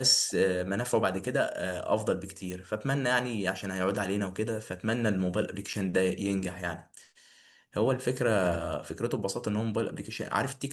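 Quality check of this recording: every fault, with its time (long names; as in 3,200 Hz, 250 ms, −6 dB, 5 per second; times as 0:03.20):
0:02.50: click −23 dBFS
0:05.73–0:05.74: drop-out 5.9 ms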